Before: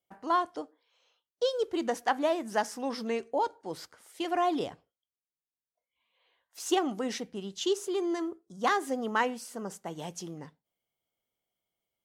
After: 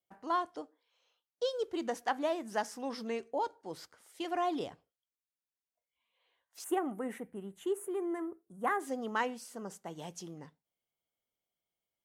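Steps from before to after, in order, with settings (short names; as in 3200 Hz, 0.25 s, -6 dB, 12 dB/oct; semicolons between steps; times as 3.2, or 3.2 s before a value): 6.64–8.8 EQ curve 2000 Hz 0 dB, 5200 Hz -29 dB, 9300 Hz +5 dB; gain -5 dB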